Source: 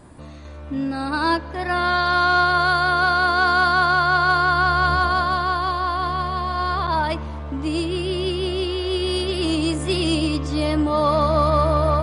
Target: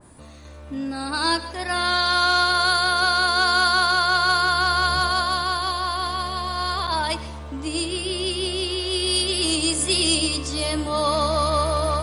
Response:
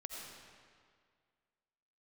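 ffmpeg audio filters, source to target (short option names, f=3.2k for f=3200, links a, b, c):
-filter_complex "[0:a]aemphasis=mode=production:type=50fm,bandreject=f=50:t=h:w=6,bandreject=f=100:t=h:w=6,bandreject=f=150:t=h:w=6,bandreject=f=200:t=h:w=6,bandreject=f=250:t=h:w=6,bandreject=f=300:t=h:w=6,bandreject=f=350:t=h:w=6,asplit=2[a][b];[1:a]atrim=start_sample=2205,afade=t=out:st=0.16:d=0.01,atrim=end_sample=7497,asetrate=31311,aresample=44100[c];[b][c]afir=irnorm=-1:irlink=0,volume=-5.5dB[d];[a][d]amix=inputs=2:normalize=0,adynamicequalizer=threshold=0.0316:dfrequency=2400:dqfactor=0.7:tfrequency=2400:tqfactor=0.7:attack=5:release=100:ratio=0.375:range=3.5:mode=boostabove:tftype=highshelf,volume=-6dB"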